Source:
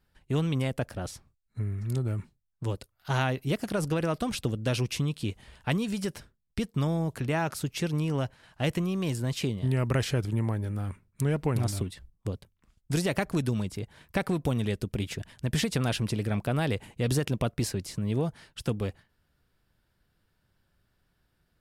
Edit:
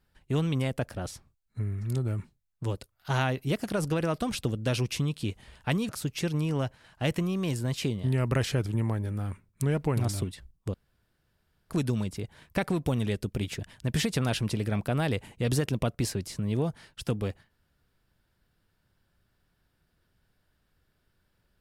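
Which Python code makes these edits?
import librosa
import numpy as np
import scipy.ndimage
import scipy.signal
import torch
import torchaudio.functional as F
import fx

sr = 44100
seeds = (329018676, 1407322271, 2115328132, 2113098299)

y = fx.edit(x, sr, fx.cut(start_s=5.89, length_s=1.59),
    fx.room_tone_fill(start_s=12.33, length_s=0.96), tone=tone)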